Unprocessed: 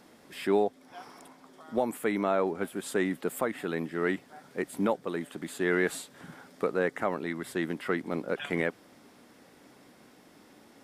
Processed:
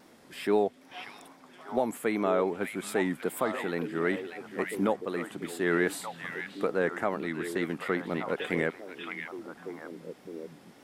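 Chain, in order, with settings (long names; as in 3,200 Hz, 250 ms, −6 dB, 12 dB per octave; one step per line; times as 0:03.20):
tape wow and flutter 75 cents
echo through a band-pass that steps 589 ms, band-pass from 2,600 Hz, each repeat −1.4 octaves, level −2.5 dB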